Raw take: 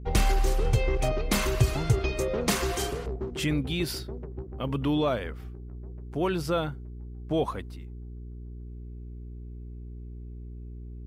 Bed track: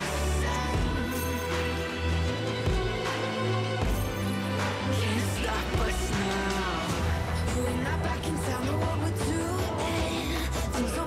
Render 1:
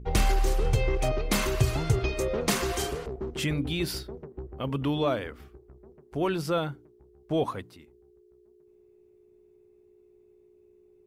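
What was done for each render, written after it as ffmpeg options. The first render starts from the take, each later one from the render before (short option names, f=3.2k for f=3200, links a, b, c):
-af "bandreject=f=60:t=h:w=4,bandreject=f=120:t=h:w=4,bandreject=f=180:t=h:w=4,bandreject=f=240:t=h:w=4,bandreject=f=300:t=h:w=4"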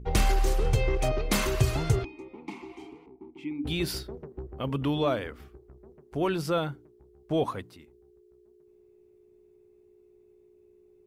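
-filter_complex "[0:a]asplit=3[a][b][c];[a]afade=t=out:st=2.03:d=0.02[d];[b]asplit=3[e][f][g];[e]bandpass=f=300:t=q:w=8,volume=0dB[h];[f]bandpass=f=870:t=q:w=8,volume=-6dB[i];[g]bandpass=f=2.24k:t=q:w=8,volume=-9dB[j];[h][i][j]amix=inputs=3:normalize=0,afade=t=in:st=2.03:d=0.02,afade=t=out:st=3.64:d=0.02[k];[c]afade=t=in:st=3.64:d=0.02[l];[d][k][l]amix=inputs=3:normalize=0"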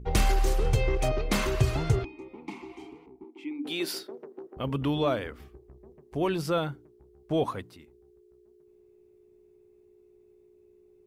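-filter_complex "[0:a]asettb=1/sr,asplit=3[a][b][c];[a]atrim=end=1.244[d];[b]atrim=start=1.24:end=2.22,asetpts=PTS-STARTPTS,afade=t=in:d=0.004:c=qsin,afade=t=out:st=0.976:d=0.004:c=qsin,highshelf=f=6.4k:g=-7.5[e];[c]atrim=start=2.216[f];[d][e]acrossfade=d=0.004:c1=hsin:c2=qsin[g];[g][f]acrossfade=d=0.004:c1=qsin:c2=hsin,asettb=1/sr,asplit=3[h][i][j];[h]atrim=end=3.244[k];[i]atrim=start=3.24:end=4.57,asetpts=PTS-STARTPTS,afade=t=in:d=0.004:c=qsin,afade=t=out:st=1.326:d=0.004:c=qsin,highpass=f=260:w=0.5412,highpass=f=260:w=1.3066[l];[j]atrim=start=4.566[m];[k][l]acrossfade=d=0.004:c1=hsin:c2=qsin[n];[n][m]acrossfade=d=0.004:c1=qsin:c2=hsin,asettb=1/sr,asplit=3[o][p][q];[o]atrim=end=5.394[r];[p]atrim=start=5.39:end=6.4,asetpts=PTS-STARTPTS,afade=t=in:d=0.004:c=qsin,afade=t=out:st=1.006:d=0.004:c=qsin,bandreject=f=1.4k:w=6.4[s];[q]atrim=start=6.396[t];[r][s]acrossfade=d=0.004:c1=hsin:c2=qsin[u];[u][t]acrossfade=d=0.004:c1=qsin:c2=hsin"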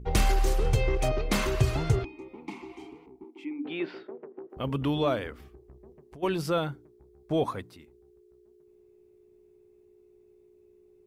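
-filter_complex "[0:a]asettb=1/sr,asplit=3[a][b][c];[a]atrim=end=3.454[d];[b]atrim=start=3.45:end=4.5,asetpts=PTS-STARTPTS,afade=t=in:d=0.004:c=qsin,afade=t=out:st=1.046:d=0.004:c=qsin,lowpass=f=2.6k:w=0.5412,lowpass=f=2.6k:w=1.3066[e];[c]atrim=start=4.496[f];[d][e]acrossfade=d=0.004:c1=hsin:c2=qsin[g];[g][f]acrossfade=d=0.004:c1=qsin:c2=hsin,asplit=3[h][i][j];[h]afade=t=out:st=5.38:d=0.02[k];[i]acompressor=threshold=-44dB:ratio=10:attack=3.2:release=140:knee=1:detection=peak,afade=t=in:st=5.38:d=0.02,afade=t=out:st=6.22:d=0.02[l];[j]afade=t=in:st=6.22:d=0.02[m];[k][l][m]amix=inputs=3:normalize=0,asettb=1/sr,asplit=3[n][o][p];[n]atrim=end=6.724[q];[o]atrim=start=6.72:end=7.71,asetpts=PTS-STARTPTS,afade=t=in:d=0.004:c=qsin,afade=t=out:st=0.986:d=0.004:c=qsin,bandreject=f=2.9k:w=12[r];[p]atrim=start=7.706[s];[q][r]acrossfade=d=0.004:c1=hsin:c2=qsin[t];[t][s]acrossfade=d=0.004:c1=qsin:c2=hsin"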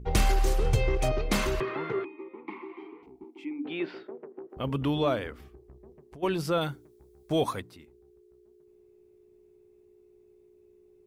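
-filter_complex "[0:a]asettb=1/sr,asplit=3[a][b][c];[a]atrim=end=1.604[d];[b]atrim=start=1.6:end=3.03,asetpts=PTS-STARTPTS,afade=t=in:d=0.004:c=qsin,afade=t=out:st=1.426:d=0.004:c=qsin,highpass=f=220:w=0.5412,highpass=f=220:w=1.3066,equalizer=f=260:t=q:w=4:g=-5,equalizer=f=370:t=q:w=4:g=4,equalizer=f=710:t=q:w=4:g=-9,equalizer=f=1.1k:t=q:w=4:g=8,equalizer=f=1.9k:t=q:w=4:g=5,equalizer=f=2.8k:t=q:w=4:g=-4,lowpass=f=2.9k:w=0.5412,lowpass=f=2.9k:w=1.3066[e];[c]atrim=start=3.026[f];[d][e]acrossfade=d=0.004:c1=hsin:c2=qsin[g];[g][f]acrossfade=d=0.004:c1=qsin:c2=hsin,asettb=1/sr,asplit=3[h][i][j];[h]atrim=end=6.614[k];[i]atrim=start=6.61:end=7.6,asetpts=PTS-STARTPTS,afade=t=in:d=0.004:c=qsin,afade=t=out:st=0.986:d=0.004:c=qsin,highshelf=f=3k:g=11[l];[j]atrim=start=7.596[m];[k][l]acrossfade=d=0.004:c1=hsin:c2=qsin[n];[n][m]acrossfade=d=0.004:c1=qsin:c2=hsin"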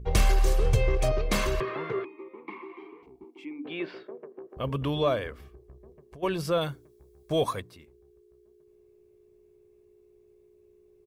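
-af "aecho=1:1:1.8:0.35"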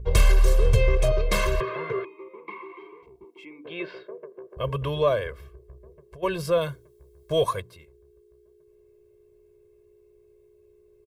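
-af "aecho=1:1:1.9:0.78"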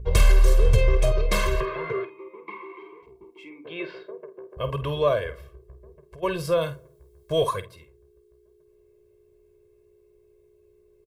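-filter_complex "[0:a]asplit=2[a][b];[b]adelay=49,volume=-11.5dB[c];[a][c]amix=inputs=2:normalize=0,asplit=2[d][e];[e]adelay=83,lowpass=f=1.3k:p=1,volume=-24dB,asplit=2[f][g];[g]adelay=83,lowpass=f=1.3k:p=1,volume=0.55,asplit=2[h][i];[i]adelay=83,lowpass=f=1.3k:p=1,volume=0.55,asplit=2[j][k];[k]adelay=83,lowpass=f=1.3k:p=1,volume=0.55[l];[d][f][h][j][l]amix=inputs=5:normalize=0"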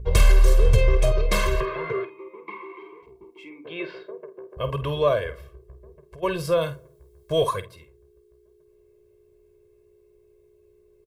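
-af "volume=1dB"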